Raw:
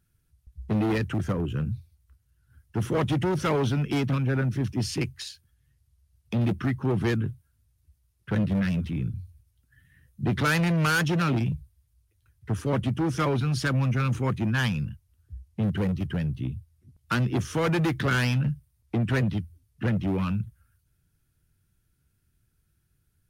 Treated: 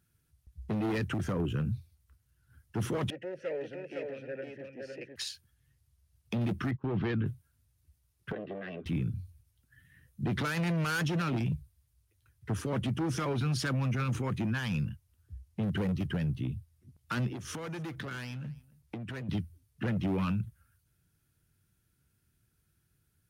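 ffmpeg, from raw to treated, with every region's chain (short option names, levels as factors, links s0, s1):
-filter_complex "[0:a]asettb=1/sr,asplit=3[s0][s1][s2];[s0]atrim=end=3.104[s3];[s1]atrim=start=3.1:end=5.16,asetpts=PTS-STARTPTS,afade=t=in:d=0.004:c=qsin,afade=t=out:st=2.056:d=0.004:c=qsin,asplit=3[s4][s5][s6];[s4]bandpass=f=530:t=q:w=8,volume=1[s7];[s5]bandpass=f=1840:t=q:w=8,volume=0.501[s8];[s6]bandpass=f=2480:t=q:w=8,volume=0.355[s9];[s7][s8][s9]amix=inputs=3:normalize=0,equalizer=f=3400:t=o:w=0.4:g=-7,aecho=1:1:510:0.631,atrim=end_sample=90846[s10];[s2]atrim=start=5.156[s11];[s3][s10]acrossfade=d=0.004:c1=hsin:c2=qsin[s12];[s12][s11]acrossfade=d=0.004:c1=qsin:c2=hsin,asettb=1/sr,asplit=3[s13][s14][s15];[s13]atrim=end=6.714[s16];[s14]atrim=start=6.71:end=7.26,asetpts=PTS-STARTPTS,afade=t=in:d=0.004:c=qsin,afade=t=out:st=0.546:d=0.004:c=qsin,lowpass=f=3900:w=0.5412,lowpass=f=3900:w=1.3066,agate=range=0.0794:threshold=0.0251:ratio=16:release=100:detection=peak[s17];[s15]atrim=start=7.256[s18];[s16][s17]acrossfade=d=0.004:c1=hsin:c2=qsin[s19];[s19][s18]acrossfade=d=0.004:c1=qsin:c2=hsin,asettb=1/sr,asplit=3[s20][s21][s22];[s20]atrim=end=8.324[s23];[s21]atrim=start=8.32:end=8.86,asetpts=PTS-STARTPTS,afade=t=in:d=0.004:c=qsin,afade=t=out:st=0.536:d=0.004:c=qsin,highpass=380,equalizer=f=400:t=q:w=4:g=4,equalizer=f=610:t=q:w=4:g=7,equalizer=f=910:t=q:w=4:g=-7,equalizer=f=1400:t=q:w=4:g=-8,equalizer=f=2300:t=q:w=4:g=-10,lowpass=f=2600:w=0.5412,lowpass=f=2600:w=1.3066,acompressor=threshold=0.02:ratio=4:attack=3.2:release=140:knee=1:detection=peak,aecho=1:1:2.6:0.4,atrim=end_sample=23814[s24];[s22]atrim=start=8.856[s25];[s23][s24]acrossfade=d=0.004:c1=hsin:c2=qsin[s26];[s26][s25]acrossfade=d=0.004:c1=qsin:c2=hsin,asettb=1/sr,asplit=3[s27][s28][s29];[s27]atrim=end=17.284[s30];[s28]atrim=start=17.28:end=19.29,asetpts=PTS-STARTPTS,afade=t=in:d=0.004:c=qsin,afade=t=out:st=2.006:d=0.004:c=qsin,acompressor=threshold=0.0178:ratio=10:attack=3.2:release=140:knee=1:detection=peak,aecho=1:1:274:0.0708,atrim=end_sample=88641[s31];[s29]atrim=start=19.286[s32];[s30][s31]acrossfade=d=0.004:c1=hsin:c2=qsin[s33];[s33][s32]acrossfade=d=0.004:c1=qsin:c2=hsin,highpass=f=96:p=1,alimiter=limit=0.0631:level=0:latency=1:release=28"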